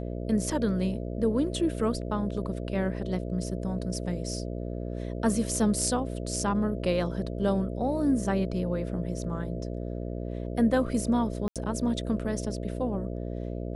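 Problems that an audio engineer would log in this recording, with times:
mains buzz 60 Hz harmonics 11 −34 dBFS
0:11.48–0:11.56: drop-out 77 ms

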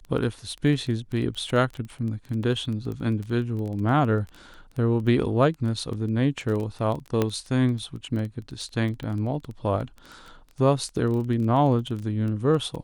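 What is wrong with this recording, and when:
surface crackle 13 per second −30 dBFS
0:07.22: click −10 dBFS

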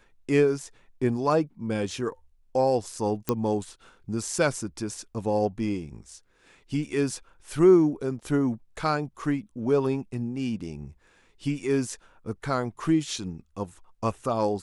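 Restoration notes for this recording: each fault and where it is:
0:03.29: click −10 dBFS

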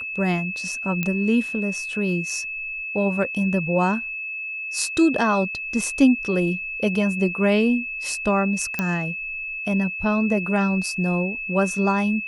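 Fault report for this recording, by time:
whistle 2,600 Hz −28 dBFS
0:01.03: click −10 dBFS
0:08.79: click −9 dBFS

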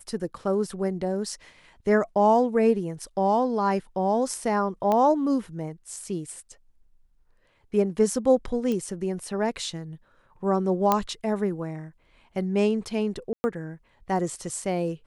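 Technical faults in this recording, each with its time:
0:04.92: click −13 dBFS
0:08.72: click −18 dBFS
0:10.92: click −7 dBFS
0:13.33–0:13.44: drop-out 110 ms

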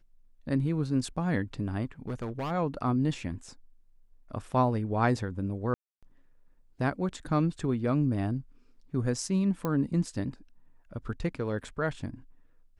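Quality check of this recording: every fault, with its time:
0:02.08–0:02.52: clipping −30 dBFS
0:05.74–0:06.03: drop-out 286 ms
0:09.65: click −18 dBFS

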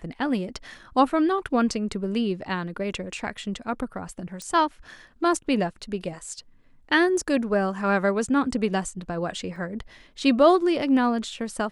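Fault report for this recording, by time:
0:04.42: click −22 dBFS
0:09.56: drop-out 2.9 ms

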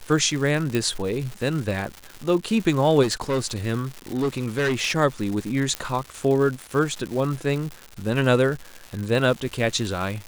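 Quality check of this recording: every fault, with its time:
surface crackle 280 per second −29 dBFS
0:00.75: click
0:03.02–0:03.45: clipping −19.5 dBFS
0:04.14–0:04.97: clipping −19 dBFS
0:05.75: click −10 dBFS

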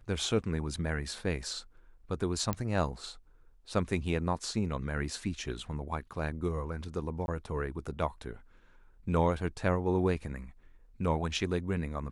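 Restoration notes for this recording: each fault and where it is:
0:02.53: click −16 dBFS
0:07.26–0:07.28: drop-out 21 ms

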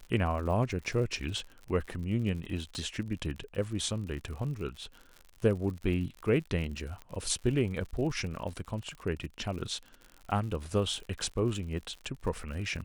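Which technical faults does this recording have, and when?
surface crackle 78 per second −39 dBFS
0:02.75: click
0:07.02: click −30 dBFS

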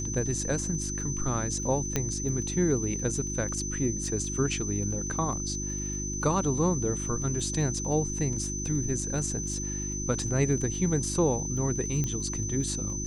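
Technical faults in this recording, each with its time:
surface crackle 13 per second −37 dBFS
mains hum 50 Hz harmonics 7 −35 dBFS
whistle 6,100 Hz −34 dBFS
0:01.96: click −11 dBFS
0:08.33: drop-out 2.6 ms
0:12.04: click −17 dBFS

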